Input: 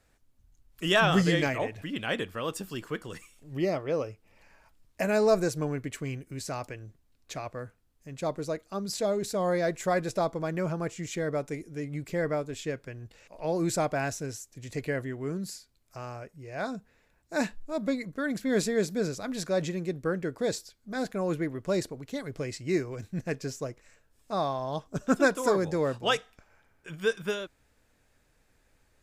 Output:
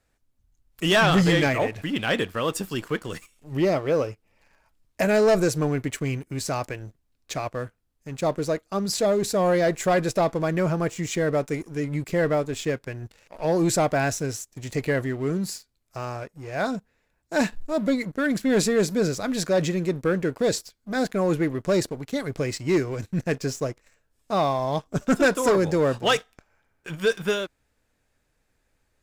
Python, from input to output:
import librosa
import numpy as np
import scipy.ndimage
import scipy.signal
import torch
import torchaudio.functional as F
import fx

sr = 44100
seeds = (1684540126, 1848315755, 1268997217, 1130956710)

y = fx.leveller(x, sr, passes=2)